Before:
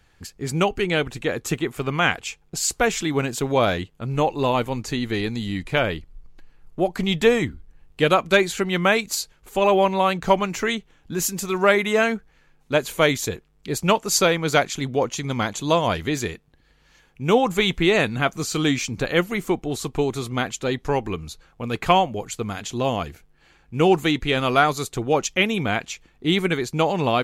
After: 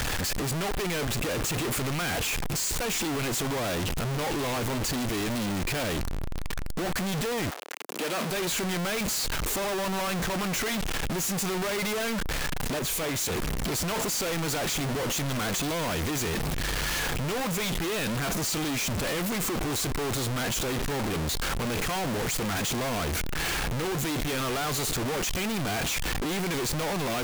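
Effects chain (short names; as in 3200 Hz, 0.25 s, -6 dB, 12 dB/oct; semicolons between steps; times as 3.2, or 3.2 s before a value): infinite clipping; 7.49–8.3 HPF 570 Hz -> 150 Hz 24 dB/oct; 12.79–13.29 three-band expander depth 100%; gain -6 dB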